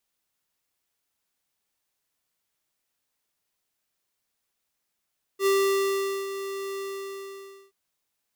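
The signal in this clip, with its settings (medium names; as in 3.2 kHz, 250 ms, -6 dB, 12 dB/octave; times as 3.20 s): ADSR square 392 Hz, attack 72 ms, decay 801 ms, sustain -12 dB, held 1.40 s, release 928 ms -21 dBFS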